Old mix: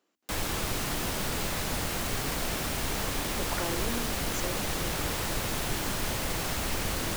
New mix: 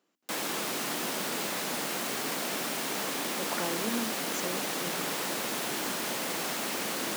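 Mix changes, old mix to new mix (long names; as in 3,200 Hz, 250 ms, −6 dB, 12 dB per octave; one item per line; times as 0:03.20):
speech: remove high-pass filter 230 Hz 24 dB per octave
master: add high-pass filter 200 Hz 24 dB per octave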